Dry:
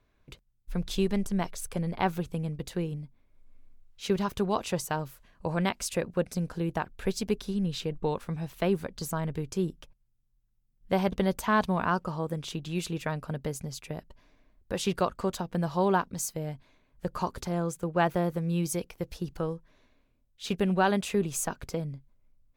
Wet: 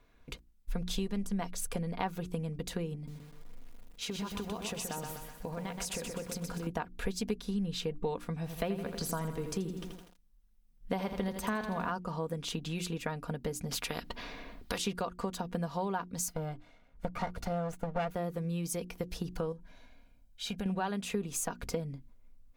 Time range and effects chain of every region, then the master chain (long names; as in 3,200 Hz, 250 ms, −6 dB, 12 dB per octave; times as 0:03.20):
0:02.95–0:06.67: downward compressor 10 to 1, threshold −38 dBFS + feedback echo at a low word length 125 ms, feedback 55%, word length 10 bits, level −4.5 dB
0:08.36–0:11.92: notch filter 7,000 Hz, Q 16 + feedback echo at a low word length 82 ms, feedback 55%, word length 9 bits, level −8.5 dB
0:13.71–0:14.78: high shelf with overshoot 5,400 Hz −6 dB, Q 1.5 + every bin compressed towards the loudest bin 2 to 1
0:16.28–0:18.11: lower of the sound and its delayed copy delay 1.4 ms + high-shelf EQ 3,500 Hz −8.5 dB
0:19.52–0:20.66: comb filter 1.3 ms, depth 54% + downward compressor 2.5 to 1, threshold −43 dBFS
whole clip: mains-hum notches 60/120/180/240/300/360 Hz; downward compressor 4 to 1, threshold −38 dBFS; comb filter 4.2 ms, depth 40%; level +4.5 dB